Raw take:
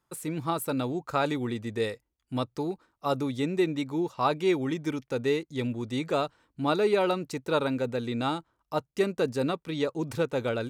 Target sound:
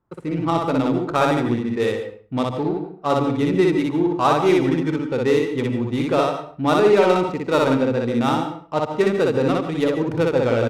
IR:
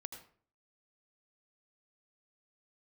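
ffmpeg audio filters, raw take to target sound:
-filter_complex "[0:a]adynamicsmooth=sensitivity=5:basefreq=1100,aecho=1:1:106:0.112,asplit=2[link_01][link_02];[1:a]atrim=start_sample=2205,afade=type=out:start_time=0.37:duration=0.01,atrim=end_sample=16758,adelay=60[link_03];[link_02][link_03]afir=irnorm=-1:irlink=0,volume=3dB[link_04];[link_01][link_04]amix=inputs=2:normalize=0,volume=6.5dB"

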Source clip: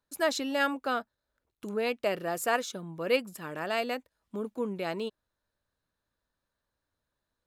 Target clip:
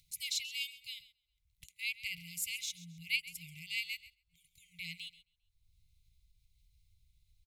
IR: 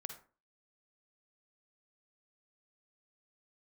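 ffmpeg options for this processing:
-filter_complex "[0:a]acrossover=split=230|1000[link_01][link_02][link_03];[link_01]acompressor=threshold=-54dB:ratio=6[link_04];[link_04][link_02][link_03]amix=inputs=3:normalize=0,afftfilt=real='re*(1-between(b*sr/4096,180,2000))':imag='im*(1-between(b*sr/4096,180,2000))':win_size=4096:overlap=0.75,asplit=2[link_05][link_06];[link_06]aecho=0:1:133|266|399:0.141|0.0452|0.0145[link_07];[link_05][link_07]amix=inputs=2:normalize=0,agate=range=-14dB:threshold=-59dB:ratio=16:detection=peak,asubboost=boost=6.5:cutoff=85,acompressor=mode=upward:threshold=-49dB:ratio=2.5"

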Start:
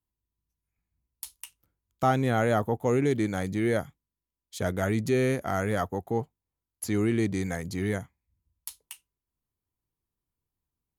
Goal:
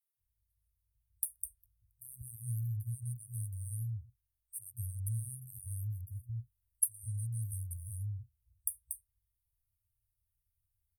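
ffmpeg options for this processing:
ffmpeg -i in.wav -filter_complex "[0:a]asettb=1/sr,asplit=3[link_01][link_02][link_03];[link_01]atrim=end=6.114[link_04];[link_02]atrim=start=6.11:end=7.58,asetpts=PTS-STARTPTS,afade=type=in:duration=0.004:curve=qsin,afade=type=out:start_time=1.466:duration=0.004:curve=qsin,aecho=1:1:3.1:0.83,atrim=end_sample=64827[link_05];[link_03]atrim=start=7.576[link_06];[link_04][link_05]acrossfade=duration=0.004:curve1=hsin:curve2=qsin[link_07];[link_07][link_06]acrossfade=duration=0.004:curve1=qsin:curve2=hsin,acrossover=split=140|620|2100[link_08][link_09][link_10][link_11];[link_08]acompressor=threshold=-49dB:ratio=6[link_12];[link_12][link_09][link_10][link_11]amix=inputs=4:normalize=0,acrossover=split=210[link_13][link_14];[link_13]adelay=180[link_15];[link_15][link_14]amix=inputs=2:normalize=0,afftfilt=real='re*(1-between(b*sr/4096,120,8400))':imag='im*(1-between(b*sr/4096,120,8400))':win_size=4096:overlap=0.75,adynamicequalizer=threshold=0.00126:dfrequency=5400:dqfactor=0.7:tfrequency=5400:tqfactor=0.7:attack=5:release=100:ratio=0.375:range=2:mode=cutabove:tftype=highshelf,volume=5dB" out.wav

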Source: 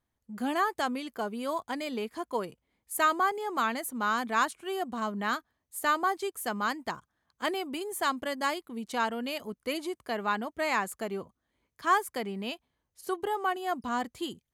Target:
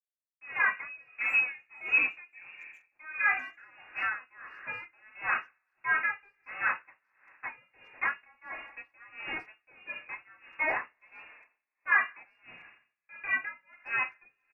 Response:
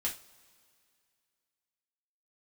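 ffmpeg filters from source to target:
-filter_complex "[0:a]asettb=1/sr,asplit=3[link_01][link_02][link_03];[link_01]atrim=end=0.824[link_04];[link_02]atrim=start=0.82:end=3.37,asetpts=PTS-STARTPTS,afade=type=in:duration=0.004:curve=qsin,afade=type=out:start_time=2.546:duration=0.004:curve=qsin,equalizer=frequency=280:width=0.82:gain=9.5[link_05];[link_03]atrim=start=3.366[link_06];[link_04][link_05]acrossfade=duration=0.004:curve1=hsin:curve2=qsin[link_07];[link_07][link_06]acrossfade=duration=0.004:curve1=qsin:curve2=hsin,aeval=exprs='val(0)*gte(abs(val(0)),0.0266)':channel_layout=same[link_08];[1:a]atrim=start_sample=2205[link_09];[link_08][link_09]afir=irnorm=-1:irlink=0,lowpass=frequency=2400:width_type=q:width=0.5098,lowpass=frequency=2400:width_type=q:width=0.6013,lowpass=frequency=2400:width_type=q:width=0.9,lowpass=frequency=2400:width_type=q:width=2.563,afreqshift=-2800,asplit=2[link_10][link_11];[link_11]adelay=390,highpass=300,lowpass=3400,asoftclip=type=hard:threshold=-23.5dB,volume=-28dB[link_12];[link_10][link_12]amix=inputs=2:normalize=0,aeval=exprs='val(0)*pow(10,-29*(0.5-0.5*cos(2*PI*1.5*n/s))/20)':channel_layout=same"

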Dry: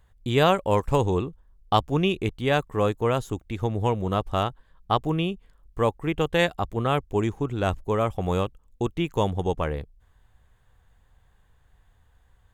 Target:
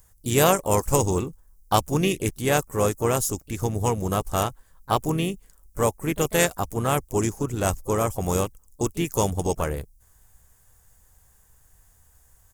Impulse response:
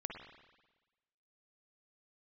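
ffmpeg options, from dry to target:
-filter_complex "[0:a]aexciter=amount=9.5:drive=4.7:freq=5300,asplit=4[link_01][link_02][link_03][link_04];[link_02]asetrate=33038,aresample=44100,atempo=1.33484,volume=-15dB[link_05];[link_03]asetrate=37084,aresample=44100,atempo=1.18921,volume=-13dB[link_06];[link_04]asetrate=55563,aresample=44100,atempo=0.793701,volume=-16dB[link_07];[link_01][link_05][link_06][link_07]amix=inputs=4:normalize=0"

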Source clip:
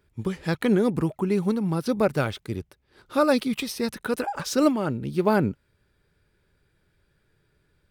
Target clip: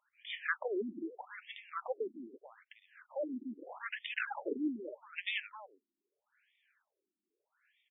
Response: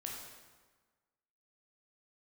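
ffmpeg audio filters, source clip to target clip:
-filter_complex "[0:a]aderivative,asettb=1/sr,asplit=3[link_01][link_02][link_03];[link_01]atrim=end=3.164[link_04];[link_02]atrim=start=3.16:end=3.86,asetpts=PTS-STARTPTS,afade=type=in:duration=0.004:curve=qsin,afade=type=out:start_time=0.696:duration=0.004:curve=qsin,aeval=exprs='(tanh(79.4*val(0)+0.45)-tanh(0.45))/79.4':channel_layout=same[link_05];[link_03]atrim=start=3.856[link_06];[link_04][link_05]acrossfade=duration=0.004:curve1=hsin:curve2=qsin[link_07];[link_07][link_06]acrossfade=duration=0.004:curve1=qsin:curve2=hsin,aecho=1:1:264:0.112,aeval=exprs='0.112*(cos(1*acos(clip(val(0)/0.112,-1,1)))-cos(1*PI/2))+0.0282*(cos(4*acos(clip(val(0)/0.112,-1,1)))-cos(4*PI/2))+0.00447*(cos(7*acos(clip(val(0)/0.112,-1,1)))-cos(7*PI/2))':channel_layout=same,afftfilt=real='re*between(b*sr/1024,250*pow(2600/250,0.5+0.5*sin(2*PI*0.8*pts/sr))/1.41,250*pow(2600/250,0.5+0.5*sin(2*PI*0.8*pts/sr))*1.41)':imag='im*between(b*sr/1024,250*pow(2600/250,0.5+0.5*sin(2*PI*0.8*pts/sr))/1.41,250*pow(2600/250,0.5+0.5*sin(2*PI*0.8*pts/sr))*1.41)':win_size=1024:overlap=0.75,volume=17dB"

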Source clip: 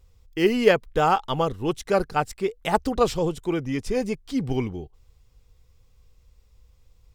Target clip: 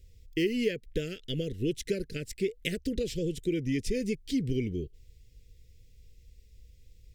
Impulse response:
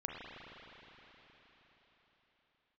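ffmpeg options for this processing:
-af "acompressor=threshold=-27dB:ratio=5,asuperstop=centerf=950:order=8:qfactor=0.69,volume=1.5dB"

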